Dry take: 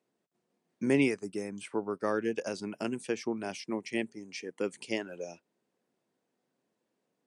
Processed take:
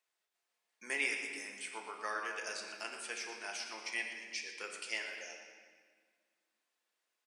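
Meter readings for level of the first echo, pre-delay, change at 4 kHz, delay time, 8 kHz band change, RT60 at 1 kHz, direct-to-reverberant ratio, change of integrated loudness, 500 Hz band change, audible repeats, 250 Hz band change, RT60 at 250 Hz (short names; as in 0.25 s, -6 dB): -12.0 dB, 5 ms, +1.5 dB, 0.119 s, +2.5 dB, 1.5 s, 0.5 dB, -6.0 dB, -15.5 dB, 1, -23.0 dB, 2.5 s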